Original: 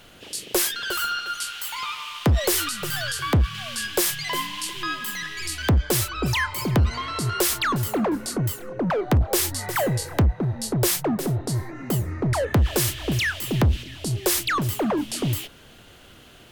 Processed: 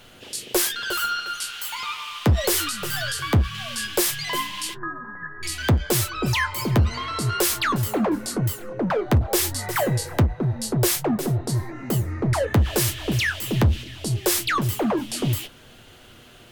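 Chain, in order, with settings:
0:04.74–0:05.43: Chebyshev low-pass filter 1,800 Hz, order 8
flanger 0.19 Hz, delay 8 ms, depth 1.6 ms, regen −45%
level +4.5 dB

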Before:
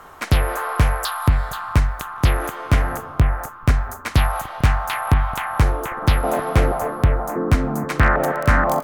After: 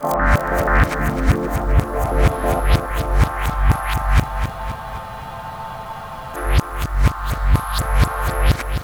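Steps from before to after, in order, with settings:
played backwards from end to start
frozen spectrum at 0:04.26, 2.09 s
feedback echo at a low word length 260 ms, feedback 55%, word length 7 bits, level −8 dB

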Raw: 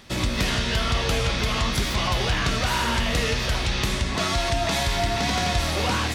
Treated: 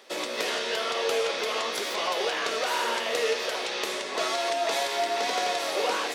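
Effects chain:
four-pole ladder high-pass 390 Hz, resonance 50%
level +5.5 dB

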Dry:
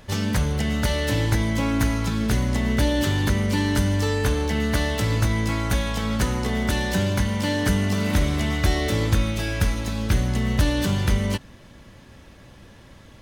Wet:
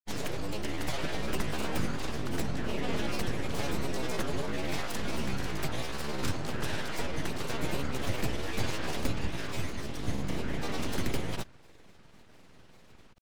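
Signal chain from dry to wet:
full-wave rectification
granular cloud, pitch spread up and down by 7 semitones
level −6.5 dB

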